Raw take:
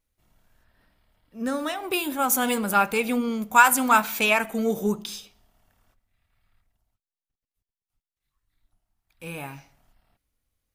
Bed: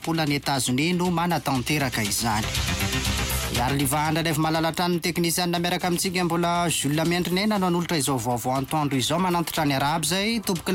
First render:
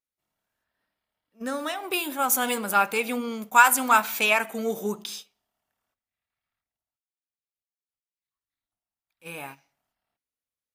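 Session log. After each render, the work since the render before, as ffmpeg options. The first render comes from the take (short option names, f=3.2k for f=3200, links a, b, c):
-af "highpass=f=390:p=1,agate=range=-12dB:threshold=-40dB:ratio=16:detection=peak"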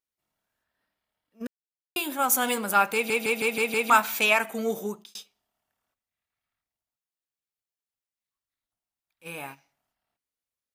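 -filter_complex "[0:a]asplit=10[a][b][c][d][e][f][g][h][i][j];[a]atrim=end=1.47,asetpts=PTS-STARTPTS,afade=t=out:st=1.466:d=0.004:c=hsin[k];[b]atrim=start=1.47:end=1.96,asetpts=PTS-STARTPTS,volume=0[l];[c]atrim=start=1.96:end=3.102,asetpts=PTS-STARTPTS,afade=t=in:d=0.004:c=hsin[m];[d]atrim=start=2.938:end=3.102[n];[e]atrim=start=2.938:end=3.102[o];[f]atrim=start=2.938:end=3.102[p];[g]atrim=start=2.938:end=3.102[q];[h]atrim=start=2.938:end=3.102[r];[i]atrim=start=3.898:end=5.15,asetpts=PTS-STARTPTS,afade=t=out:st=0.852:d=0.4[s];[j]atrim=start=5.15,asetpts=PTS-STARTPTS,afade=t=in:d=0.004:c=hsin[t];[k][l][m]concat=n=3:v=0:a=1[u];[u][n]acrossfade=d=0.004:c1=hsin:c2=hsin[v];[v][o]acrossfade=d=0.004:c1=hsin:c2=hsin[w];[w][p]acrossfade=d=0.004:c1=hsin:c2=hsin[x];[x][q]acrossfade=d=0.004:c1=hsin:c2=hsin[y];[y][r]acrossfade=d=0.004:c1=hsin:c2=hsin[z];[s][t]concat=n=2:v=0:a=1[aa];[z][aa]acrossfade=d=0.004:c1=hsin:c2=hsin"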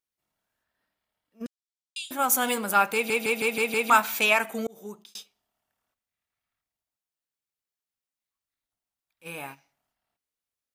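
-filter_complex "[0:a]asettb=1/sr,asplit=3[a][b][c];[a]atrim=end=1.464[d];[b]atrim=start=1.46:end=2.11,asetpts=PTS-STARTPTS,afade=t=in:d=0.004:c=qsin,afade=t=out:st=0.646:d=0.004:c=qsin,asuperpass=centerf=5300:order=8:qfactor=0.92[e];[c]atrim=start=2.106[f];[d][e]acrossfade=d=0.004:c1=hsin:c2=qsin[g];[g][f]acrossfade=d=0.004:c1=qsin:c2=hsin,asplit=2[h][i];[h]atrim=end=4.67,asetpts=PTS-STARTPTS,afade=t=out:st=4.666:d=0.004:c=hsin[j];[i]atrim=start=4.67,asetpts=PTS-STARTPTS,afade=t=in:d=0.5[k];[j][k]concat=n=2:v=0:a=1"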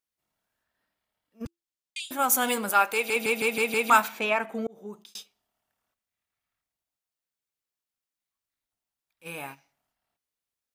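-filter_complex "[0:a]asettb=1/sr,asplit=3[a][b][c];[a]atrim=end=1.454[d];[b]atrim=start=1.45:end=2,asetpts=PTS-STARTPTS,afade=t=in:d=0.004:c=qsin,afade=t=out:st=0.546:d=0.004:c=qsin,afreqshift=-340[e];[c]atrim=start=1.996[f];[d][e]acrossfade=d=0.004:c1=hsin:c2=qsin[g];[g][f]acrossfade=d=0.004:c1=qsin:c2=hsin,asettb=1/sr,asplit=3[h][i][j];[h]atrim=end=2.694[k];[i]atrim=start=2.69:end=3.16,asetpts=PTS-STARTPTS,afade=t=in:d=0.004:c=qsin,afade=t=out:st=0.466:d=0.004:c=qsin,equalizer=f=170:w=1.5:g=-14[l];[j]atrim=start=3.156[m];[k][l]acrossfade=d=0.004:c1=hsin:c2=qsin[n];[n][m]acrossfade=d=0.004:c1=qsin:c2=hsin,asplit=3[o][p][q];[o]afade=t=out:st=4.07:d=0.02[r];[p]lowpass=f=1.3k:p=1,afade=t=in:st=4.07:d=0.02,afade=t=out:st=4.92:d=0.02[s];[q]afade=t=in:st=4.92:d=0.02[t];[r][s][t]amix=inputs=3:normalize=0"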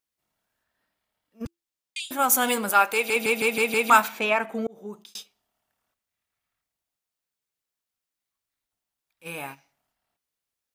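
-af "volume=2.5dB"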